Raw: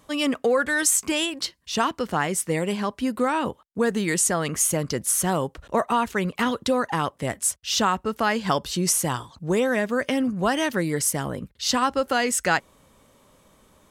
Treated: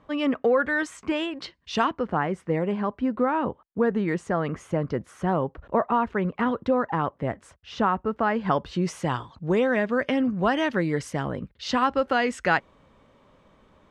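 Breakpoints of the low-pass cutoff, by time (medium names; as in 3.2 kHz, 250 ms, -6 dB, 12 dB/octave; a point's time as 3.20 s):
1.27 s 2 kHz
1.76 s 3.8 kHz
2.01 s 1.5 kHz
8.27 s 1.5 kHz
9.13 s 2.9 kHz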